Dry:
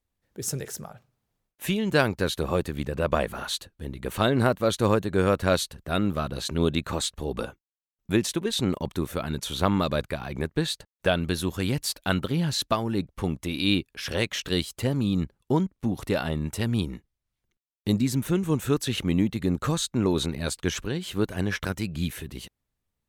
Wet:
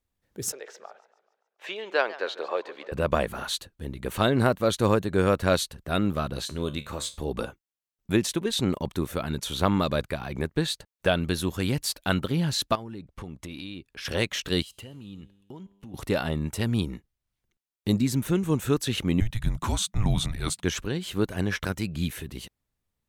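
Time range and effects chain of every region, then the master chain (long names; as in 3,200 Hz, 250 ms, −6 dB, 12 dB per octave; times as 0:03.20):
0:00.52–0:02.92: high-pass filter 450 Hz 24 dB per octave + high-frequency loss of the air 180 metres + feedback echo with a swinging delay time 142 ms, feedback 50%, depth 183 cents, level −17 dB
0:06.45–0:07.18: high-shelf EQ 9,600 Hz +5 dB + tuned comb filter 72 Hz, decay 0.28 s, mix 70%
0:12.75–0:14.05: high-shelf EQ 9,400 Hz −9.5 dB + downward compressor 12 to 1, threshold −34 dBFS
0:14.62–0:15.94: parametric band 2,900 Hz +11.5 dB 0.26 octaves + downward compressor 4 to 1, threshold −36 dBFS + tuned comb filter 99 Hz, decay 1.4 s, mix 50%
0:19.20–0:20.63: parametric band 9,400 Hz +5 dB 0.23 octaves + frequency shifter −220 Hz
whole clip: no processing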